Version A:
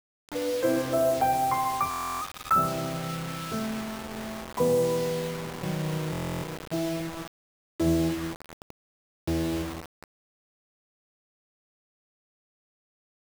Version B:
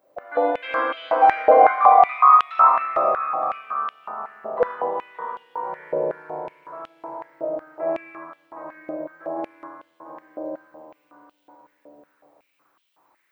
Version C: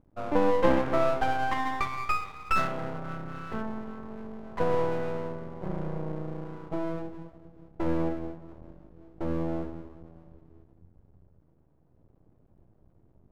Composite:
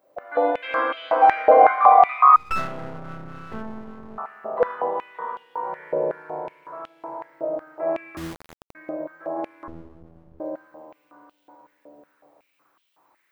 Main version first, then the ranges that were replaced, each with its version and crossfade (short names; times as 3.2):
B
2.36–4.18 from C
8.17–8.75 from A
9.68–10.4 from C